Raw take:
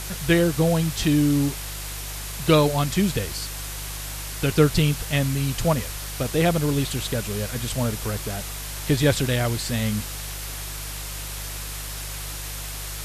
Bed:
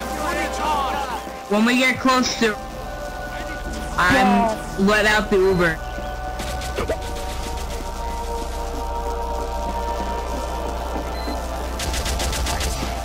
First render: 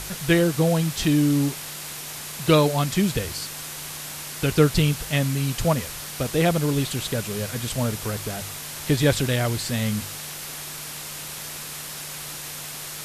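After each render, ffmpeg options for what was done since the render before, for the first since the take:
-af "bandreject=f=50:t=h:w=4,bandreject=f=100:t=h:w=4"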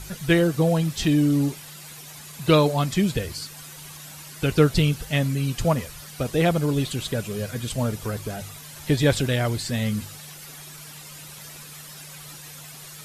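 -af "afftdn=nr=11:nf=-36"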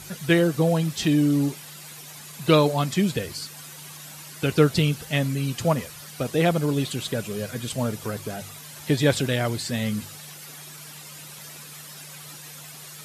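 -af "highpass=120"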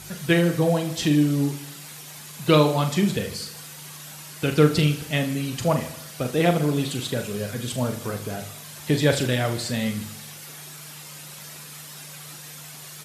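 -filter_complex "[0:a]asplit=2[s0][s1];[s1]adelay=40,volume=0.398[s2];[s0][s2]amix=inputs=2:normalize=0,aecho=1:1:77|154|231|308|385|462:0.2|0.114|0.0648|0.037|0.0211|0.012"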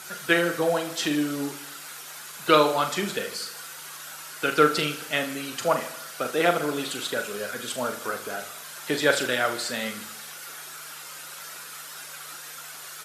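-af "highpass=380,equalizer=f=1400:t=o:w=0.43:g=10"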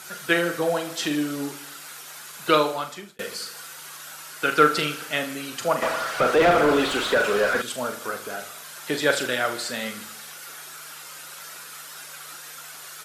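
-filter_complex "[0:a]asettb=1/sr,asplit=3[s0][s1][s2];[s0]atrim=end=4.434[s3];[s1]atrim=start=4.43:end=5.13,asetpts=PTS-STARTPTS,afade=t=in:d=0.004:c=qsin,afade=t=out:st=0.696:d=0.004:c=qsin,equalizer=f=1400:w=1:g=3.5[s4];[s2]atrim=start=5.126[s5];[s3][s4]acrossfade=d=0.004:c1=hsin:c2=qsin[s6];[s6][s5]acrossfade=d=0.004:c1=qsin:c2=hsin,asettb=1/sr,asplit=3[s7][s8][s9];[s7]atrim=end=5.824[s10];[s8]atrim=start=5.82:end=7.62,asetpts=PTS-STARTPTS,afade=t=in:d=0.004:c=qsin,afade=t=out:st=1.796:d=0.004:c=qsin,asplit=2[s11][s12];[s12]highpass=f=720:p=1,volume=22.4,asoftclip=type=tanh:threshold=0.422[s13];[s11][s13]amix=inputs=2:normalize=0,lowpass=f=1000:p=1,volume=0.501[s14];[s9]atrim=start=7.616[s15];[s10][s14]acrossfade=d=0.004:c1=hsin:c2=qsin[s16];[s16][s15]acrossfade=d=0.004:c1=qsin:c2=hsin,asplit=2[s17][s18];[s17]atrim=end=3.19,asetpts=PTS-STARTPTS,afade=t=out:st=2.48:d=0.71[s19];[s18]atrim=start=3.19,asetpts=PTS-STARTPTS,afade=t=in:d=0.004:c=hsin[s20];[s19][s20]concat=n=2:v=0:a=1"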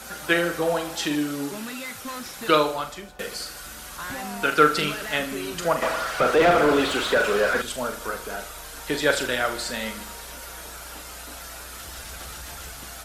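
-filter_complex "[1:a]volume=0.119[s0];[0:a][s0]amix=inputs=2:normalize=0"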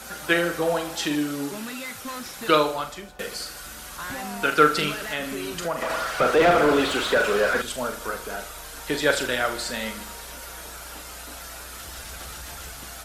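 -filter_complex "[0:a]asettb=1/sr,asplit=3[s0][s1][s2];[s0]atrim=end=5.074[s3];[s1]atrim=start=5.07:end=5.9,asetpts=PTS-STARTPTS,afade=t=in:d=0.004:c=qsin,afade=t=out:st=0.826:d=0.004:c=qsin,acompressor=threshold=0.0501:ratio=2:attack=3.2:release=140:knee=1:detection=peak[s4];[s2]atrim=start=5.896[s5];[s3][s4]acrossfade=d=0.004:c1=hsin:c2=qsin[s6];[s6][s5]acrossfade=d=0.004:c1=qsin:c2=hsin"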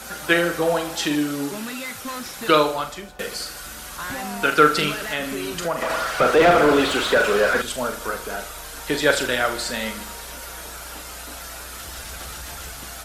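-af "volume=1.41,alimiter=limit=0.794:level=0:latency=1"

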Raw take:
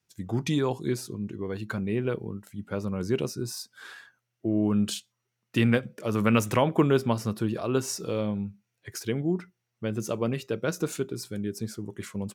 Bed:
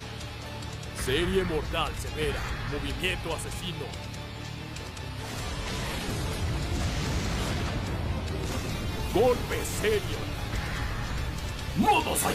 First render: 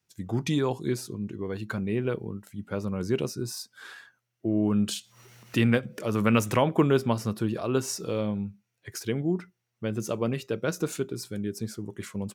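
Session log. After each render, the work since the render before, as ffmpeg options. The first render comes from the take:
-filter_complex "[0:a]asettb=1/sr,asplit=3[s0][s1][s2];[s0]atrim=end=4.684[s3];[s1]atrim=start=4.68:end=6.59,asetpts=PTS-STARTPTS,afade=t=in:d=0.004:c=qsin,afade=t=out:st=1.906:d=0.004:c=qsin,acompressor=mode=upward:threshold=0.0355:ratio=2.5:attack=3.2:release=140:knee=2.83:detection=peak[s4];[s2]atrim=start=6.586[s5];[s3][s4]acrossfade=d=0.004:c1=hsin:c2=qsin[s6];[s6][s5]acrossfade=d=0.004:c1=qsin:c2=hsin"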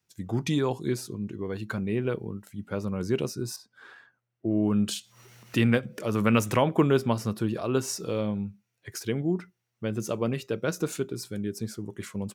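-filter_complex "[0:a]asettb=1/sr,asplit=3[s0][s1][s2];[s0]atrim=end=3.564[s3];[s1]atrim=start=3.56:end=4.51,asetpts=PTS-STARTPTS,afade=t=in:d=0.004:c=qsin,afade=t=out:st=0.946:d=0.004:c=qsin,lowpass=f=1200:p=1[s4];[s2]atrim=start=4.506[s5];[s3][s4]acrossfade=d=0.004:c1=hsin:c2=qsin[s6];[s6][s5]acrossfade=d=0.004:c1=qsin:c2=hsin"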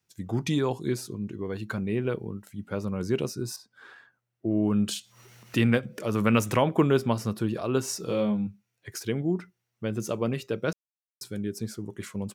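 -filter_complex "[0:a]asettb=1/sr,asplit=3[s0][s1][s2];[s0]atrim=end=8.064[s3];[s1]atrim=start=8.06:end=8.47,asetpts=PTS-STARTPTS,afade=t=in:d=0.004:c=qsin,afade=t=out:st=0.406:d=0.004:c=qsin,asplit=2[s4][s5];[s5]adelay=24,volume=0.75[s6];[s4][s6]amix=inputs=2:normalize=0,atrim=end_sample=18081[s7];[s2]atrim=start=8.466[s8];[s3][s7]acrossfade=d=0.004:c1=hsin:c2=qsin[s9];[s9][s8]acrossfade=d=0.004:c1=qsin:c2=hsin,asplit=3[s10][s11][s12];[s10]atrim=end=10.73,asetpts=PTS-STARTPTS,afade=t=out:st=10.726:d=0.004:c=hsin[s13];[s11]atrim=start=10.73:end=11.21,asetpts=PTS-STARTPTS,volume=0[s14];[s12]atrim=start=11.21,asetpts=PTS-STARTPTS,afade=t=in:d=0.004:c=hsin[s15];[s13][s14][s15]concat=n=3:v=0:a=1"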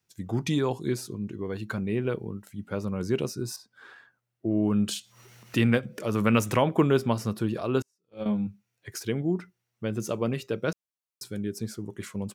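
-filter_complex "[0:a]asettb=1/sr,asplit=3[s0][s1][s2];[s0]atrim=end=7.824[s3];[s1]atrim=start=7.82:end=8.26,asetpts=PTS-STARTPTS,afade=t=in:d=0.004:c=qsin,afade=t=out:st=0.436:d=0.004:c=qsin,agate=range=0.00708:threshold=0.0631:ratio=16:release=100:detection=peak[s4];[s2]atrim=start=8.256[s5];[s3][s4]acrossfade=d=0.004:c1=hsin:c2=qsin[s6];[s6][s5]acrossfade=d=0.004:c1=qsin:c2=hsin"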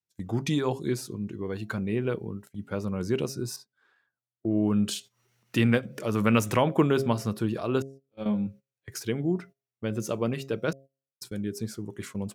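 -af "bandreject=f=135.5:t=h:w=4,bandreject=f=271:t=h:w=4,bandreject=f=406.5:t=h:w=4,bandreject=f=542:t=h:w=4,bandreject=f=677.5:t=h:w=4,agate=range=0.141:threshold=0.00631:ratio=16:detection=peak"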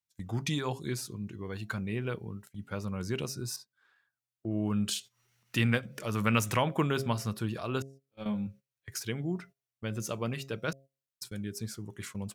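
-af "equalizer=f=360:t=o:w=2.3:g=-8.5"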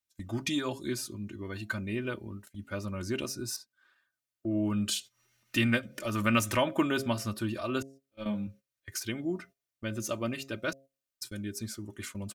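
-af "bandreject=f=900:w=9.7,aecho=1:1:3.3:0.73"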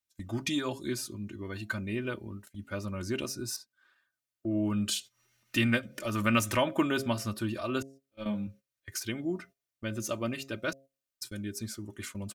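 -af anull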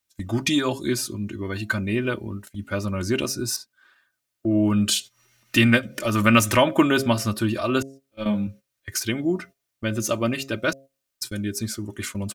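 -af "volume=2.99"

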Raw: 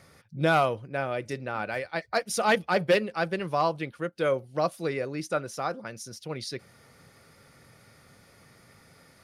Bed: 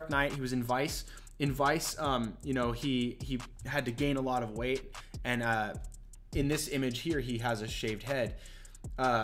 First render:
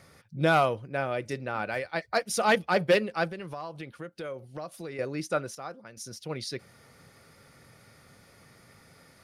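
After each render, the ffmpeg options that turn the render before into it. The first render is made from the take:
-filter_complex "[0:a]asettb=1/sr,asplit=3[s0][s1][s2];[s0]atrim=end=3.304[s3];[s1]atrim=start=3.3:end=4.99,asetpts=PTS-STARTPTS,afade=t=in:d=0.004:c=qsin,afade=t=out:st=1.686:d=0.004:c=qsin,acompressor=threshold=0.0158:ratio=4:attack=3.2:release=140:knee=1:detection=peak[s4];[s2]atrim=start=4.986[s5];[s3][s4]acrossfade=d=0.004:c1=hsin:c2=qsin[s6];[s6][s5]acrossfade=d=0.004:c1=qsin:c2=hsin,asplit=3[s7][s8][s9];[s7]atrim=end=5.552[s10];[s8]atrim=start=5.548:end=5.972,asetpts=PTS-STARTPTS,volume=0.355[s11];[s9]atrim=start=5.968[s12];[s10][s11]acrossfade=d=0.004:c1=hsin:c2=hsin[s13];[s13][s12]acrossfade=d=0.004:c1=hsin:c2=hsin"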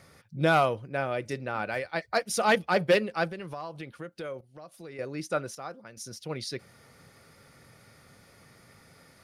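-filter_complex "[0:a]asplit=2[s0][s1];[s0]atrim=end=4.41,asetpts=PTS-STARTPTS,afade=t=out:st=4.406:d=0.004:c=hsin:silence=0.237137[s2];[s1]atrim=start=4.41,asetpts=PTS-STARTPTS,afade=t=in:d=1.07:silence=0.237137[s3];[s2][s3]concat=n=2:v=0:a=1"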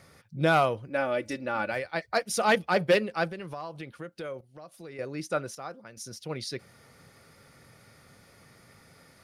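-filter_complex "[0:a]asettb=1/sr,asplit=3[s0][s1][s2];[s0]atrim=end=0.874[s3];[s1]atrim=start=0.87:end=1.72,asetpts=PTS-STARTPTS,afade=t=in:d=0.004:c=qsin,afade=t=out:st=0.846:d=0.004:c=qsin,aecho=1:1:3.5:0.7,atrim=end_sample=37485[s4];[s2]atrim=start=1.716[s5];[s3][s4]acrossfade=d=0.004:c1=hsin:c2=qsin[s6];[s6][s5]acrossfade=d=0.004:c1=qsin:c2=hsin"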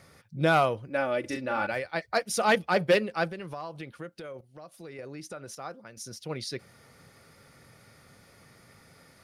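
-filter_complex "[0:a]asettb=1/sr,asplit=3[s0][s1][s2];[s0]atrim=end=1.204[s3];[s1]atrim=start=1.2:end=1.67,asetpts=PTS-STARTPTS,afade=t=in:d=0.004:c=qsin,afade=t=out:st=0.466:d=0.004:c=qsin,asplit=2[s4][s5];[s5]adelay=39,volume=0.562[s6];[s4][s6]amix=inputs=2:normalize=0,atrim=end_sample=20727[s7];[s2]atrim=start=1.666[s8];[s3][s7]acrossfade=d=0.004:c1=hsin:c2=qsin[s9];[s9][s8]acrossfade=d=0.004:c1=qsin:c2=hsin,asettb=1/sr,asplit=3[s10][s11][s12];[s10]atrim=end=4.074[s13];[s11]atrim=start=4.07:end=5.57,asetpts=PTS-STARTPTS,afade=t=in:d=0.004:c=qsin,afade=t=out:st=1.496:d=0.004:c=qsin,acompressor=threshold=0.0141:ratio=6:attack=3.2:release=140:knee=1:detection=peak[s14];[s12]atrim=start=5.566[s15];[s13][s14]acrossfade=d=0.004:c1=hsin:c2=qsin[s16];[s16][s15]acrossfade=d=0.004:c1=qsin:c2=hsin"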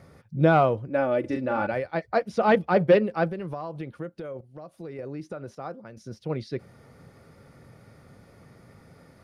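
-filter_complex "[0:a]acrossover=split=4800[s0][s1];[s1]acompressor=threshold=0.00158:ratio=4:attack=1:release=60[s2];[s0][s2]amix=inputs=2:normalize=0,tiltshelf=f=1300:g=7"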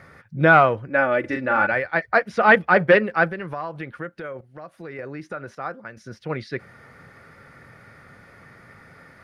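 -af "equalizer=f=1700:w=1:g=15"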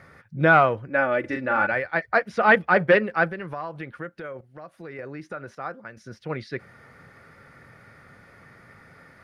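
-af "volume=0.75"

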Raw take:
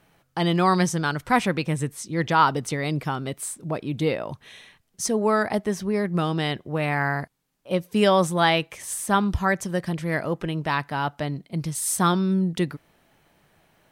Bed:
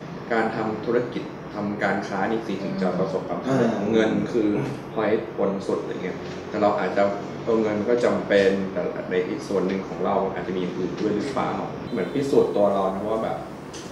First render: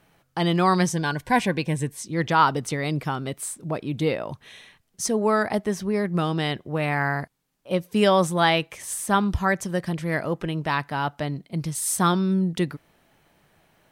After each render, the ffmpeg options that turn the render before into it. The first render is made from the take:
-filter_complex "[0:a]asettb=1/sr,asplit=3[s0][s1][s2];[s0]atrim=end=0.924[s3];[s1]atrim=start=0.92:end=2.05,asetpts=PTS-STARTPTS,afade=t=in:d=0.004:c=qsin,afade=t=out:st=1.126:d=0.004:c=qsin,asuperstop=centerf=1300:order=20:qfactor=5[s4];[s2]atrim=start=2.046[s5];[s3][s4]acrossfade=d=0.004:c1=hsin:c2=qsin[s6];[s6][s5]acrossfade=d=0.004:c1=qsin:c2=hsin"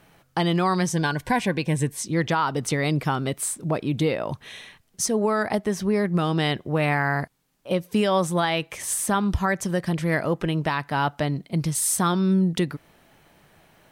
-filter_complex "[0:a]asplit=2[s0][s1];[s1]acompressor=threshold=0.0398:ratio=6,volume=0.794[s2];[s0][s2]amix=inputs=2:normalize=0,alimiter=limit=0.237:level=0:latency=1:release=198"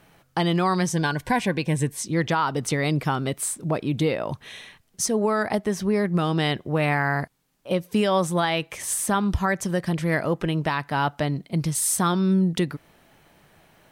-af anull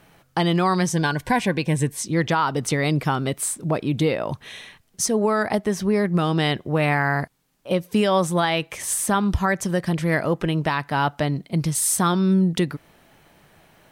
-af "volume=1.26"

